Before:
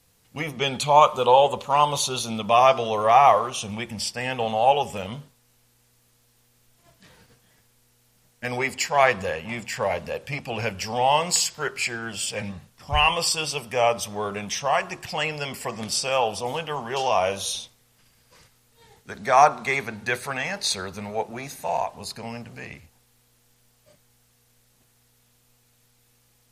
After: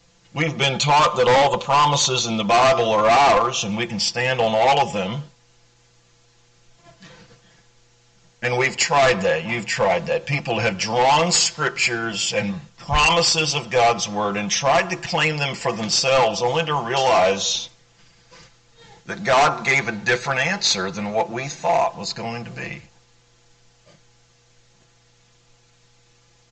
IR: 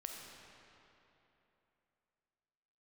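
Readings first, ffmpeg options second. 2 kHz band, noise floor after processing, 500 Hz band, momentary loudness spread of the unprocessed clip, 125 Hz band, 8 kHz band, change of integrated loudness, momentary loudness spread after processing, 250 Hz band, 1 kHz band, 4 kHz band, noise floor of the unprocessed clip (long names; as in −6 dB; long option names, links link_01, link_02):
+6.5 dB, −57 dBFS, +4.0 dB, 15 LU, +7.5 dB, +5.0 dB, +4.0 dB, 11 LU, +7.5 dB, +2.0 dB, +6.5 dB, −63 dBFS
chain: -af "aecho=1:1:5.9:0.72,aresample=16000,asoftclip=type=hard:threshold=-18.5dB,aresample=44100,volume=6dB"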